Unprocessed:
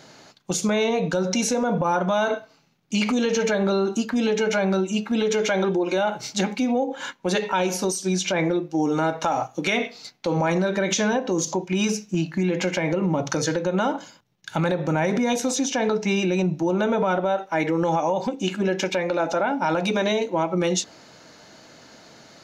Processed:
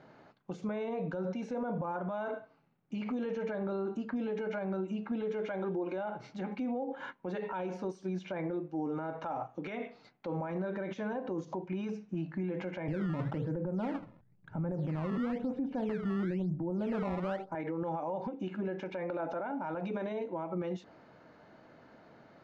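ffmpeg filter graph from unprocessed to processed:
ffmpeg -i in.wav -filter_complex "[0:a]asettb=1/sr,asplit=3[link_01][link_02][link_03];[link_01]atrim=end=12.884[link_04];[link_02]atrim=start=12.88:end=17.55,asetpts=PTS-STARTPTS,afade=type=in:duration=0.004:curve=qsin,afade=type=out:start_time=4.666:duration=0.004:curve=qsin,lowpass=frequency=1300:poles=1,aemphasis=mode=reproduction:type=riaa,acrusher=samples=16:mix=1:aa=0.000001:lfo=1:lforange=25.6:lforate=1[link_05];[link_03]atrim=start=17.546[link_06];[link_04][link_05]acrossfade=duration=0.004:curve1=hsin:curve2=qsin[link_07];[link_07][link_06]acrossfade=duration=0.004:curve1=qsin:curve2=hsin,alimiter=limit=-20.5dB:level=0:latency=1:release=89,lowpass=1600,volume=-7dB" out.wav

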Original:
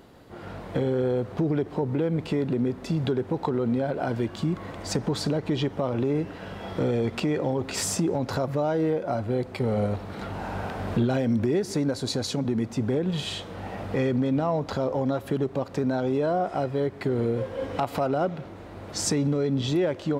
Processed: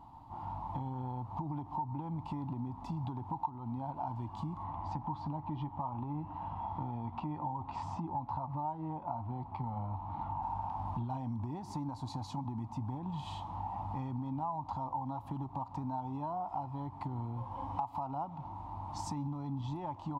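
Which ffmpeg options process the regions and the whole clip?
ffmpeg -i in.wav -filter_complex "[0:a]asettb=1/sr,asplit=3[link_01][link_02][link_03];[link_01]atrim=end=4.634[link_04];[link_02]atrim=start=4.63:end=10.43,asetpts=PTS-STARTPTS,afade=type=in:duration=0.004:curve=qsin,afade=type=out:start_time=5.796:duration=0.004:curve=qsin,lowpass=3000,asplit=2[link_05][link_06];[link_06]adelay=13,volume=-11.5dB[link_07];[link_05][link_07]amix=inputs=2:normalize=0,atrim=end_sample=255780[link_08];[link_03]atrim=start=10.426[link_09];[link_04][link_08]acrossfade=duration=0.004:curve1=hsin:curve2=qsin[link_10];[link_10][link_09]acrossfade=duration=0.004:curve1=qsin:curve2=hsin,firequalizer=gain_entry='entry(110,0);entry(200,-9);entry(290,-6);entry(440,-29);entry(890,14);entry(1500,-21);entry(2700,-15);entry(8200,-18)':delay=0.05:min_phase=1,acompressor=threshold=-36dB:ratio=3,volume=-1dB" out.wav

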